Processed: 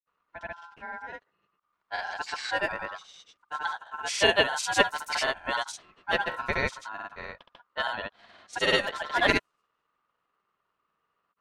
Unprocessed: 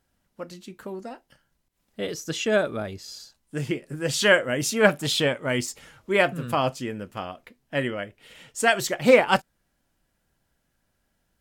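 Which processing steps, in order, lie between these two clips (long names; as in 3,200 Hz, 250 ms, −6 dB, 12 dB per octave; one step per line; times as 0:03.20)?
ring modulation 1,200 Hz
low-pass that shuts in the quiet parts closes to 2,800 Hz, open at −21 dBFS
granular cloud, pitch spread up and down by 0 semitones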